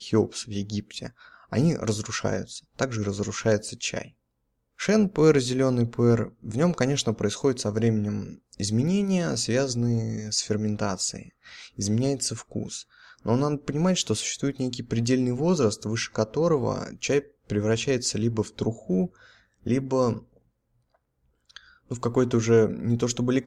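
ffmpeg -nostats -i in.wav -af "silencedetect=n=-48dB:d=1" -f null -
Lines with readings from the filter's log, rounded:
silence_start: 20.37
silence_end: 21.50 | silence_duration: 1.13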